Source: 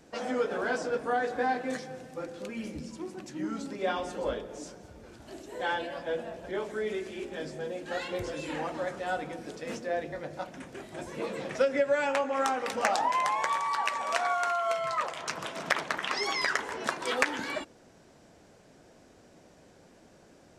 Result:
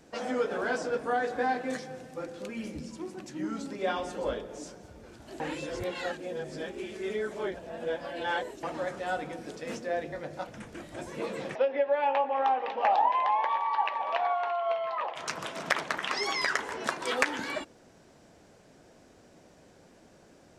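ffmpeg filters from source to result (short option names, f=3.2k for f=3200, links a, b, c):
-filter_complex "[0:a]asettb=1/sr,asplit=3[a][b][c];[a]atrim=end=10.474[d];[b]atrim=start=10.47:end=10.96,asetpts=PTS-STARTPTS,afade=t=in:d=0.004:c=qsin,afade=t=out:st=0.486:d=0.004:c=qsin,afreqshift=-52[e];[c]atrim=start=10.956[f];[d][e]acrossfade=d=0.004:c1=hsin:c2=qsin[g];[g][f]acrossfade=d=0.004:c1=qsin:c2=hsin,asplit=3[h][i][j];[h]afade=t=out:st=11.54:d=0.02[k];[i]highpass=400,equalizer=f=840:t=q:w=4:g=8,equalizer=f=1.4k:t=q:w=4:g=-10,equalizer=f=2.1k:t=q:w=4:g=-5,lowpass=f=3.2k:w=0.5412,lowpass=f=3.2k:w=1.3066,afade=t=in:st=11.54:d=0.02,afade=t=out:st=15.15:d=0.02[l];[j]afade=t=in:st=15.15:d=0.02[m];[k][l][m]amix=inputs=3:normalize=0,asplit=3[n][o][p];[n]atrim=end=5.402[q];[o]atrim=start=5.398:end=8.632,asetpts=PTS-STARTPTS,areverse[r];[p]atrim=start=8.628[s];[q][r]acrossfade=d=0.004:c1=hsin:c2=hsin[t];[t][s]acrossfade=d=0.004:c1=hsin:c2=hsin"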